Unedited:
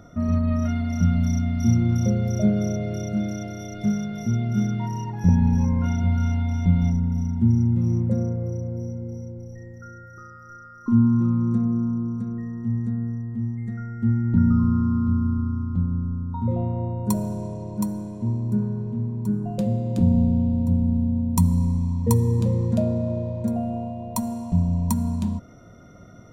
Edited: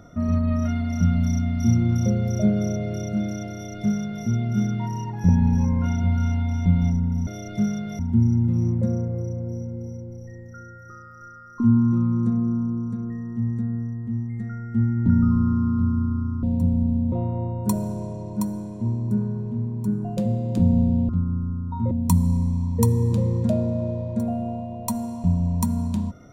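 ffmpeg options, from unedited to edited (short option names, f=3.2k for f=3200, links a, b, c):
-filter_complex "[0:a]asplit=7[a][b][c][d][e][f][g];[a]atrim=end=7.272[h];[b]atrim=start=3.528:end=4.252[i];[c]atrim=start=7.268:end=15.712[j];[d]atrim=start=20.498:end=21.192[k];[e]atrim=start=16.528:end=20.502[l];[f]atrim=start=15.708:end=16.532[m];[g]atrim=start=21.188[n];[h][i]acrossfade=d=0.004:c1=hsin:c2=hsin[o];[o][j]acrossfade=d=0.004:c1=hsin:c2=hsin[p];[p][k]acrossfade=d=0.004:c1=hsin:c2=hsin[q];[q][l]acrossfade=d=0.004:c1=hsin:c2=hsin[r];[r][m]acrossfade=d=0.004:c1=hsin:c2=hsin[s];[s][n]acrossfade=d=0.004:c1=hsin:c2=hsin"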